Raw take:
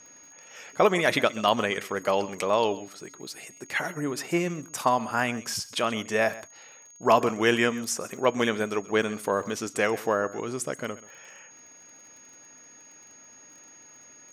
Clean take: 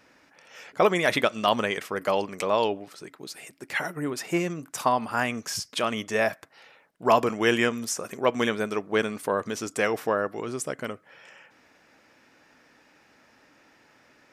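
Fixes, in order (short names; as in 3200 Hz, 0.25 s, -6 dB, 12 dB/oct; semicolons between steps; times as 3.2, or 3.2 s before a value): de-click; notch 6600 Hz, Q 30; inverse comb 0.131 s -18 dB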